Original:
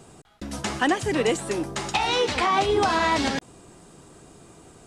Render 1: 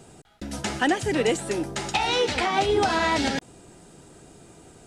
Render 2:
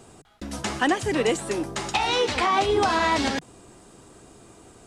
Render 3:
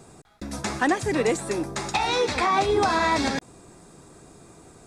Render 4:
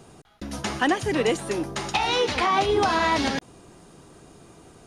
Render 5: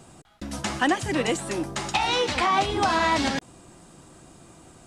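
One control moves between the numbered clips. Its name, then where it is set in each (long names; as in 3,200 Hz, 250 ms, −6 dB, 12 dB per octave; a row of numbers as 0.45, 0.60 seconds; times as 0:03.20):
notch filter, centre frequency: 1,100, 160, 3,000, 7,800, 430 Hertz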